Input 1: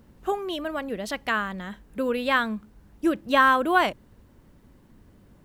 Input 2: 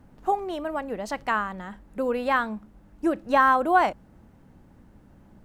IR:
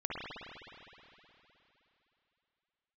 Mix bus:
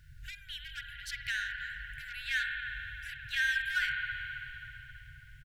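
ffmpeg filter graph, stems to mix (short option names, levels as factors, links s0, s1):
-filter_complex "[0:a]highshelf=f=6200:g=-5,volume=1.06,asplit=2[s0][s1];[s1]volume=0.251[s2];[1:a]highshelf=f=2000:t=q:w=3:g=-13,acompressor=threshold=0.112:ratio=6,asoftclip=type=tanh:threshold=0.0376,adelay=0.9,volume=0.75,asplit=2[s3][s4];[s4]apad=whole_len=239919[s5];[s0][s5]sidechaincompress=threshold=0.00631:ratio=8:attack=16:release=187[s6];[2:a]atrim=start_sample=2205[s7];[s2][s7]afir=irnorm=-1:irlink=0[s8];[s6][s3][s8]amix=inputs=3:normalize=0,afftfilt=real='re*(1-between(b*sr/4096,140,1400))':imag='im*(1-between(b*sr/4096,140,1400))':win_size=4096:overlap=0.75"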